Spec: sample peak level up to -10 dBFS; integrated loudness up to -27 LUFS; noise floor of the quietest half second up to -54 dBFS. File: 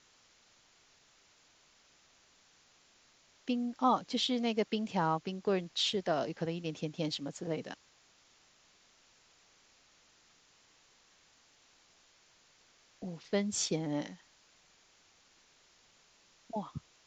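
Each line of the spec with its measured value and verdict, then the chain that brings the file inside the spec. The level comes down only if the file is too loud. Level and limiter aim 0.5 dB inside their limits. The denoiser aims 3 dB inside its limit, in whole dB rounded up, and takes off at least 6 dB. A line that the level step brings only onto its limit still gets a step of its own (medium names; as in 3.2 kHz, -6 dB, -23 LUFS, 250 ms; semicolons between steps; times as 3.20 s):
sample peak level -17.0 dBFS: pass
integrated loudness -34.5 LUFS: pass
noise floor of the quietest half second -66 dBFS: pass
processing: none needed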